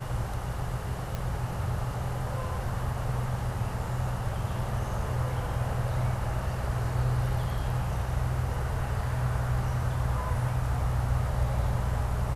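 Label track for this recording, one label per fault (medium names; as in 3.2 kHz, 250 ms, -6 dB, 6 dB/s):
1.150000	1.150000	pop -19 dBFS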